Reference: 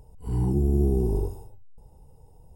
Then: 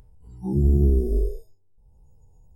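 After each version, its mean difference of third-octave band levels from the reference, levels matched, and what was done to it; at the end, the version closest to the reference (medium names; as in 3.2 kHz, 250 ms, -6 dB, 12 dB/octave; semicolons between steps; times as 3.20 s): 6.0 dB: spectral sustain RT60 0.78 s; spectral noise reduction 25 dB; bass shelf 200 Hz +10 dB; upward compressor, threshold -35 dBFS; trim -3.5 dB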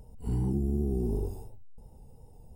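3.0 dB: peaking EQ 230 Hz +8.5 dB 0.29 oct; compression 5:1, threshold -26 dBFS, peak gain reduction 9 dB; vibrato 2.8 Hz 37 cents; peaking EQ 1 kHz -5 dB 0.37 oct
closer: second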